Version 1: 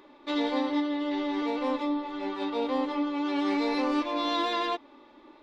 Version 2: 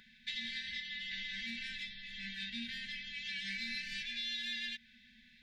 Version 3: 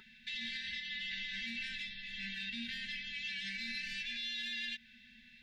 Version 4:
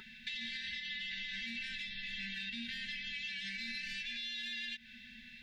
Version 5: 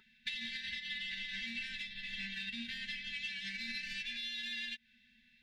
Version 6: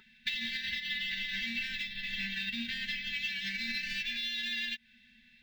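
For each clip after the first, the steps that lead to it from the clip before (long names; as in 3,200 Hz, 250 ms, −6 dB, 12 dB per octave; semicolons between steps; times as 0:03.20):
brick-wall band-stop 240–1,500 Hz; downward compressor 5 to 1, threshold −40 dBFS, peak gain reduction 8.5 dB; level +2.5 dB
hollow resonant body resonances 400/910/1,300/2,700 Hz, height 14 dB, ringing for 60 ms; brickwall limiter −33 dBFS, peak gain reduction 6 dB; level +1 dB
downward compressor, threshold −45 dBFS, peak gain reduction 8 dB; level +6 dB
in parallel at −8 dB: soft clipping −37 dBFS, distortion −17 dB; on the sum: expander for the loud parts 2.5 to 1, over −49 dBFS; level +1.5 dB
linearly interpolated sample-rate reduction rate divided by 2×; level +6 dB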